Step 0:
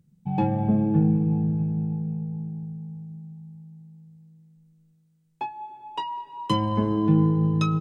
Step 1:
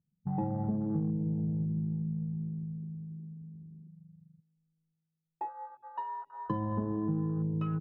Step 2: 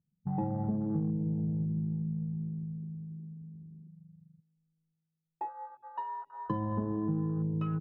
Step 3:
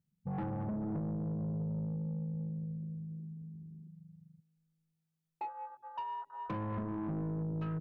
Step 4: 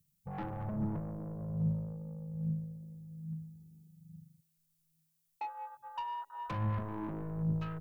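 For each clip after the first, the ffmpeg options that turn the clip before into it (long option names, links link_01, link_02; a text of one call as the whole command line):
ffmpeg -i in.wav -af "afwtdn=0.0224,lowpass=frequency=1100:poles=1,acompressor=threshold=-26dB:ratio=4,volume=-3.5dB" out.wav
ffmpeg -i in.wav -af anull out.wav
ffmpeg -i in.wav -af "asoftclip=type=tanh:threshold=-33dB" out.wav
ffmpeg -i in.wav -filter_complex "[0:a]acrossover=split=220|410[link_01][link_02][link_03];[link_01]aphaser=in_gain=1:out_gain=1:delay=3.5:decay=0.66:speed=1.2:type=triangular[link_04];[link_02]aeval=exprs='0.015*(cos(1*acos(clip(val(0)/0.015,-1,1)))-cos(1*PI/2))+0.00596*(cos(3*acos(clip(val(0)/0.015,-1,1)))-cos(3*PI/2))':channel_layout=same[link_05];[link_03]crystalizer=i=3.5:c=0[link_06];[link_04][link_05][link_06]amix=inputs=3:normalize=0" out.wav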